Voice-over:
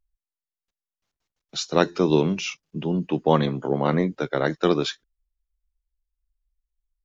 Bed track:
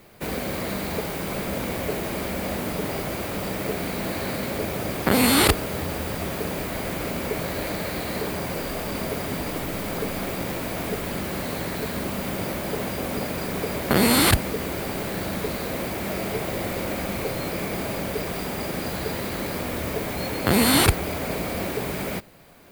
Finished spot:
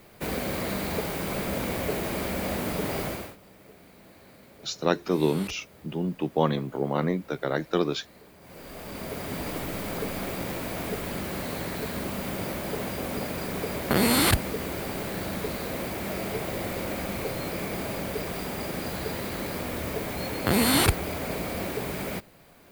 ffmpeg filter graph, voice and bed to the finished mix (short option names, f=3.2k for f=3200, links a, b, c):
-filter_complex "[0:a]adelay=3100,volume=-4.5dB[a];[1:a]volume=19dB,afade=t=out:st=3.05:d=0.31:silence=0.0749894,afade=t=in:st=8.4:d=1.08:silence=0.0944061[b];[a][b]amix=inputs=2:normalize=0"